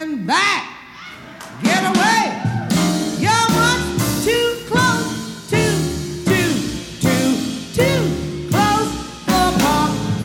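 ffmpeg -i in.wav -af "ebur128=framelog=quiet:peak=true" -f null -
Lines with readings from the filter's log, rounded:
Integrated loudness:
  I:         -17.4 LUFS
  Threshold: -27.7 LUFS
Loudness range:
  LRA:         2.1 LU
  Threshold: -37.7 LUFS
  LRA low:   -18.6 LUFS
  LRA high:  -16.5 LUFS
True peak:
  Peak:       -1.9 dBFS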